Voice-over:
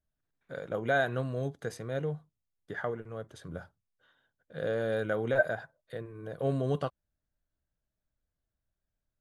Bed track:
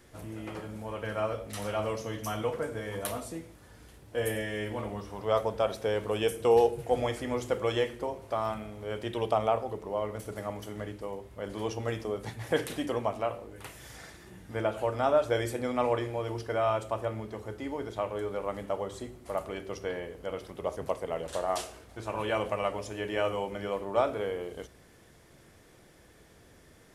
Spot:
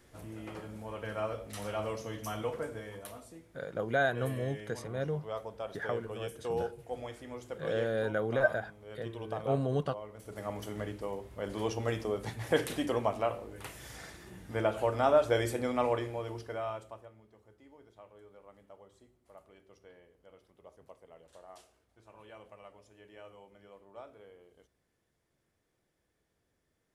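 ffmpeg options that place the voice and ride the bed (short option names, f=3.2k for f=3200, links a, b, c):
-filter_complex "[0:a]adelay=3050,volume=-1dB[a];[1:a]volume=8dB,afade=t=out:st=2.66:d=0.39:silence=0.398107,afade=t=in:st=10.17:d=0.43:silence=0.251189,afade=t=out:st=15.51:d=1.59:silence=0.0794328[b];[a][b]amix=inputs=2:normalize=0"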